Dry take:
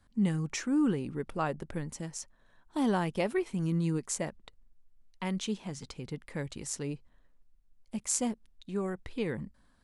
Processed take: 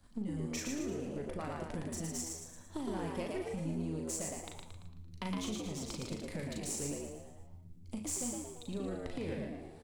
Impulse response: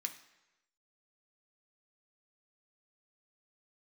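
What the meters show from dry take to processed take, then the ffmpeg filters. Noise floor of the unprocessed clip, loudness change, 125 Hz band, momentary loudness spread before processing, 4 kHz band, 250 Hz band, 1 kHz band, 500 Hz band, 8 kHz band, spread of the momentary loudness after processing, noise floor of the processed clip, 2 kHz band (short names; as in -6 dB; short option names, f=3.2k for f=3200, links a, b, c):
-65 dBFS, -6.0 dB, -6.5 dB, 13 LU, -3.0 dB, -7.0 dB, -7.5 dB, -5.0 dB, -2.5 dB, 11 LU, -53 dBFS, -7.0 dB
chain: -filter_complex "[0:a]aeval=exprs='if(lt(val(0),0),0.447*val(0),val(0))':c=same,equalizer=f=1.6k:t=o:w=1.4:g=-6,acompressor=threshold=-46dB:ratio=6,asplit=7[a][b][c][d][e][f][g];[b]adelay=113,afreqshift=81,volume=-3dB[h];[c]adelay=226,afreqshift=162,volume=-9.4dB[i];[d]adelay=339,afreqshift=243,volume=-15.8dB[j];[e]adelay=452,afreqshift=324,volume=-22.1dB[k];[f]adelay=565,afreqshift=405,volume=-28.5dB[l];[g]adelay=678,afreqshift=486,volume=-34.9dB[m];[a][h][i][j][k][l][m]amix=inputs=7:normalize=0,asplit=2[n][o];[1:a]atrim=start_sample=2205,adelay=38[p];[o][p]afir=irnorm=-1:irlink=0,volume=-1.5dB[q];[n][q]amix=inputs=2:normalize=0,volume=7dB"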